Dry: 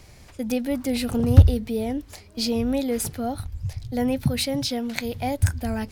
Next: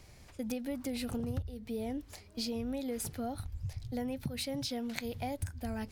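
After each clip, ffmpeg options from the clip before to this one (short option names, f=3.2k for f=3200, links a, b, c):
-af "acompressor=threshold=-25dB:ratio=20,volume=-7.5dB"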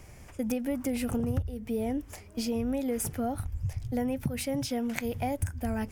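-af "equalizer=f=4.1k:w=2.6:g=-13,volume=6.5dB"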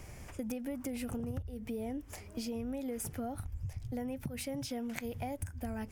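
-af "acompressor=threshold=-41dB:ratio=2.5,volume=1dB"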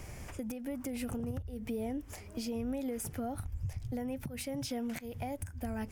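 -af "alimiter=level_in=7dB:limit=-24dB:level=0:latency=1:release=332,volume=-7dB,volume=3dB"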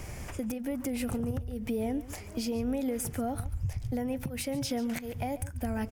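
-af "aecho=1:1:141:0.15,volume=5dB"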